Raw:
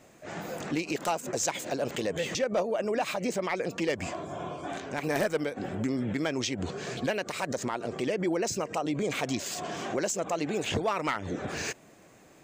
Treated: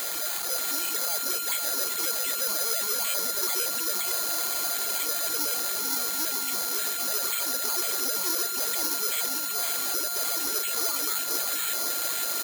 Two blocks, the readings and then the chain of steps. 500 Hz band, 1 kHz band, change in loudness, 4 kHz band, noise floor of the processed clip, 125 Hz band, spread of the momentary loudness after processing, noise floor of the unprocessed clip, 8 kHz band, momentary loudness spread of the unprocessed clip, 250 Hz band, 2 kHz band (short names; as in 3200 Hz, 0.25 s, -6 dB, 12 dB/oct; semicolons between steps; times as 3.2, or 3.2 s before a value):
-8.5 dB, 0.0 dB, +6.5 dB, +9.5 dB, -31 dBFS, under -20 dB, 1 LU, -56 dBFS, +11.5 dB, 7 LU, -11.5 dB, 0.0 dB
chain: infinite clipping; Bessel high-pass 470 Hz, order 6; reverb removal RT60 1.9 s; LPF 4700 Hz 24 dB/oct; high shelf 2800 Hz +6 dB; limiter -37.5 dBFS, peak gain reduction 13.5 dB; whine 1400 Hz -48 dBFS; bit-crush 8-bit; on a send: echo 0.515 s -5.5 dB; on the sum: careless resampling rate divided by 8×, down filtered, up zero stuff; gain +6 dB